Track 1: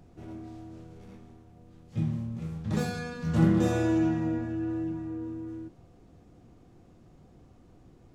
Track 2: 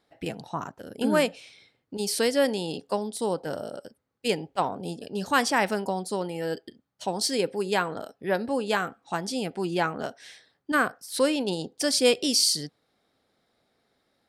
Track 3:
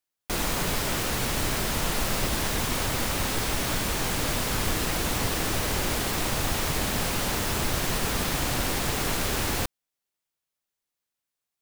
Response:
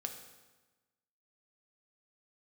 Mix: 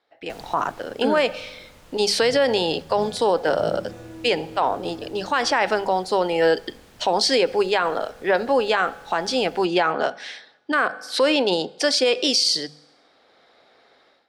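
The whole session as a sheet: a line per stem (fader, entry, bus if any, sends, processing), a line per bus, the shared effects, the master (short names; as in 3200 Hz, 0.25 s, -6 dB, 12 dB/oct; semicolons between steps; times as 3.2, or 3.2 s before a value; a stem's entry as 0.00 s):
-11.0 dB, 0.25 s, no send, vocal rider within 3 dB 0.5 s
0.0 dB, 0.00 s, send -14.5 dB, three-band isolator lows -15 dB, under 380 Hz, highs -17 dB, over 5800 Hz; notches 50/100/150/200 Hz; AGC gain up to 16.5 dB
-13.5 dB, 0.00 s, no send, auto duck -10 dB, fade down 1.05 s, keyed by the second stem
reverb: on, RT60 1.2 s, pre-delay 3 ms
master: high shelf 9700 Hz -8 dB; limiter -10 dBFS, peak gain reduction 10 dB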